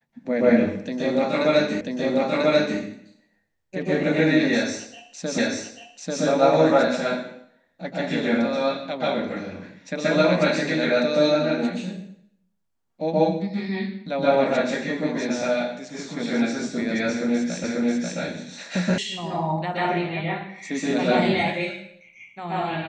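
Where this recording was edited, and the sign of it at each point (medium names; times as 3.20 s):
1.81 s: repeat of the last 0.99 s
5.38 s: repeat of the last 0.84 s
17.64 s: repeat of the last 0.54 s
18.98 s: sound stops dead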